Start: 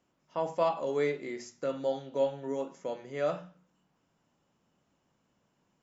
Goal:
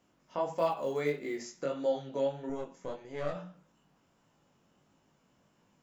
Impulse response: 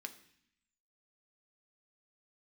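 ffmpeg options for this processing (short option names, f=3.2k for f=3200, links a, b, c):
-filter_complex "[0:a]asplit=2[a][b];[b]acompressor=threshold=-44dB:ratio=6,volume=3dB[c];[a][c]amix=inputs=2:normalize=0,asettb=1/sr,asplit=3[d][e][f];[d]atrim=end=2.494[g];[e]atrim=start=2.49:end=3.35,asetpts=PTS-STARTPTS,afade=t=in:d=0.004:c=qsin,afade=t=out:st=0.856:d=0.004:c=qsin,aeval=exprs='(tanh(17.8*val(0)+0.8)-tanh(0.8))/17.8':c=same[h];[f]atrim=start=3.346[i];[g][h]acrossfade=d=0.004:c1=hsin:c2=qsin[j];[j][i]acrossfade=d=0.004:c1=qsin:c2=hsin,flanger=delay=18.5:depth=4.3:speed=1.6,asettb=1/sr,asplit=3[k][l][m];[k]atrim=end=0.534[n];[l]atrim=start=0.53:end=1.44,asetpts=PTS-STARTPTS,afade=t=in:d=0.004:c=qsin,afade=t=out:st=0.906:d=0.004:c=qsin,acrusher=bits=9:mode=log:mix=0:aa=0.000001[o];[m]atrim=start=1.436[p];[n][o]acrossfade=d=0.004:c1=hsin:c2=qsin[q];[q][p]acrossfade=d=0.004:c1=qsin:c2=hsin"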